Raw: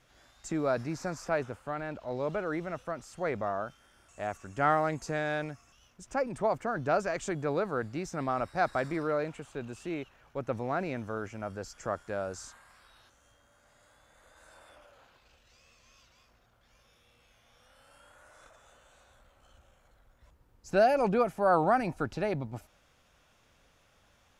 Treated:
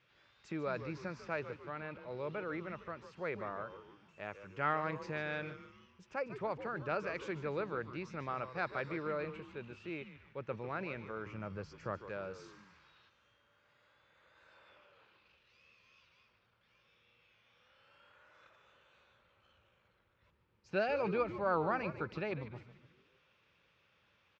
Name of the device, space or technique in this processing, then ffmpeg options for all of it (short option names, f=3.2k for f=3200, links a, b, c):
frequency-shifting delay pedal into a guitar cabinet: -filter_complex "[0:a]asettb=1/sr,asplit=3[a][b][c];[a]atrim=end=11.264[d];[b]atrim=start=11.26:end=12.09,asetpts=PTS-STARTPTS,afade=t=in:d=0.004:c=qsin,afade=t=out:st=0.826:d=0.004:c=qsin,lowshelf=f=230:g=9.5[e];[c]atrim=start=12.086[f];[d][e]acrossfade=d=0.004:c1=hsin:c2=qsin[g];[g][f]acrossfade=d=0.004:c1=qsin:c2=hsin,asplit=6[h][i][j][k][l][m];[i]adelay=147,afreqshift=-130,volume=-12dB[n];[j]adelay=294,afreqshift=-260,volume=-18.2dB[o];[k]adelay=441,afreqshift=-390,volume=-24.4dB[p];[l]adelay=588,afreqshift=-520,volume=-30.6dB[q];[m]adelay=735,afreqshift=-650,volume=-36.8dB[r];[h][n][o][p][q][r]amix=inputs=6:normalize=0,highpass=110,equalizer=f=260:t=q:w=4:g=-9,equalizer=f=710:t=q:w=4:g=-10,equalizer=f=2.5k:t=q:w=4:g=6,lowpass=f=4.5k:w=0.5412,lowpass=f=4.5k:w=1.3066,volume=-5.5dB"